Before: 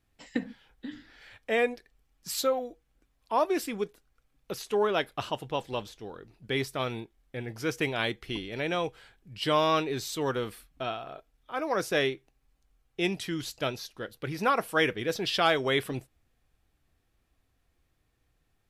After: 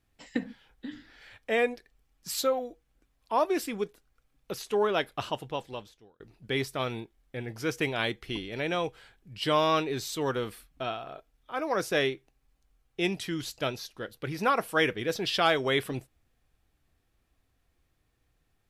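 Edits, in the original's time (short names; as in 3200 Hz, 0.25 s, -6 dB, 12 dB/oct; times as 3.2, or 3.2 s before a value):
5.34–6.2 fade out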